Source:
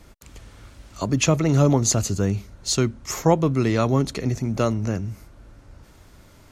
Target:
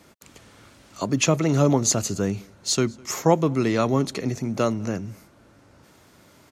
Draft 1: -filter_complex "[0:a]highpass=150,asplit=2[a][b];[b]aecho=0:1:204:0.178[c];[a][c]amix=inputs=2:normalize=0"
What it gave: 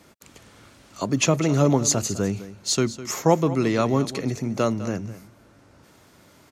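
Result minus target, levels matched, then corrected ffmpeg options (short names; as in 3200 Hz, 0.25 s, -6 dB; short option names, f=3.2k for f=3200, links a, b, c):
echo-to-direct +12 dB
-filter_complex "[0:a]highpass=150,asplit=2[a][b];[b]aecho=0:1:204:0.0447[c];[a][c]amix=inputs=2:normalize=0"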